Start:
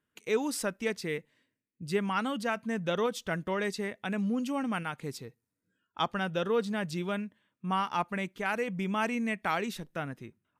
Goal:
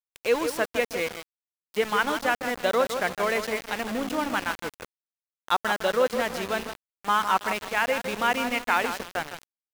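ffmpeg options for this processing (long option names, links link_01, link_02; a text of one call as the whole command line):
ffmpeg -i in.wav -filter_complex "[0:a]bass=frequency=250:gain=-14,treble=frequency=4000:gain=-9,asplit=2[link_01][link_02];[link_02]adelay=172,lowpass=frequency=1800:poles=1,volume=-7dB,asplit=2[link_03][link_04];[link_04]adelay=172,lowpass=frequency=1800:poles=1,volume=0.48,asplit=2[link_05][link_06];[link_06]adelay=172,lowpass=frequency=1800:poles=1,volume=0.48,asplit=2[link_07][link_08];[link_08]adelay=172,lowpass=frequency=1800:poles=1,volume=0.48,asplit=2[link_09][link_10];[link_10]adelay=172,lowpass=frequency=1800:poles=1,volume=0.48,asplit=2[link_11][link_12];[link_12]adelay=172,lowpass=frequency=1800:poles=1,volume=0.48[link_13];[link_03][link_05][link_07][link_09][link_11][link_13]amix=inputs=6:normalize=0[link_14];[link_01][link_14]amix=inputs=2:normalize=0,asetrate=48000,aresample=44100,aeval=exprs='val(0)*gte(abs(val(0)),0.0133)':channel_layout=same,volume=7.5dB" out.wav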